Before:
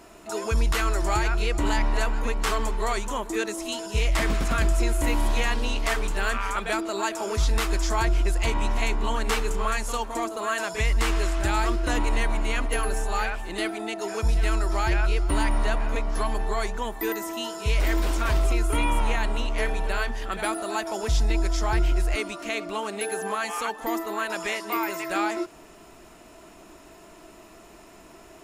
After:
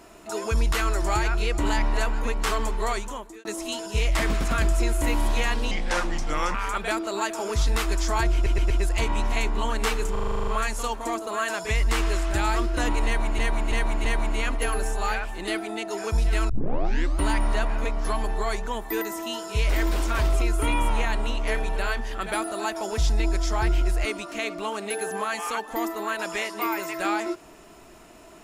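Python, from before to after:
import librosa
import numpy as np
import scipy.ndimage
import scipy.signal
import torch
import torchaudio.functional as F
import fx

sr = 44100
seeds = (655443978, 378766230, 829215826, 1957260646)

y = fx.edit(x, sr, fx.fade_out_span(start_s=2.89, length_s=0.56),
    fx.speed_span(start_s=5.71, length_s=0.65, speed=0.78),
    fx.stutter(start_s=8.16, slice_s=0.12, count=4),
    fx.stutter(start_s=9.57, slice_s=0.04, count=10),
    fx.repeat(start_s=12.15, length_s=0.33, count=4),
    fx.tape_start(start_s=14.6, length_s=0.71), tone=tone)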